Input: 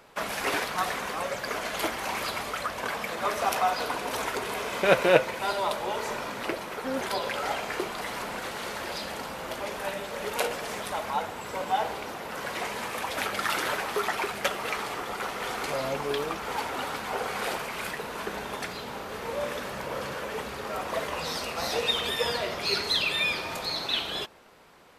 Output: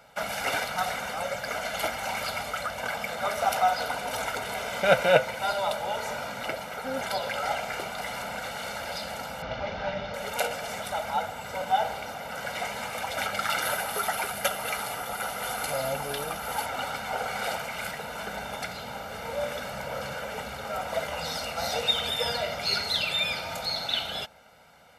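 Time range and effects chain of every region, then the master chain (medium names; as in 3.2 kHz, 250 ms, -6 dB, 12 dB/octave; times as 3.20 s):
9.42–10.14 s: one-bit delta coder 32 kbps, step -36.5 dBFS + low-pass 3.9 kHz + bass shelf 230 Hz +8.5 dB
13.62–16.66 s: peaking EQ 11 kHz +13.5 dB 0.45 oct + band-stop 2.2 kHz, Q 24
whole clip: high-pass 45 Hz; comb 1.4 ms, depth 76%; trim -2 dB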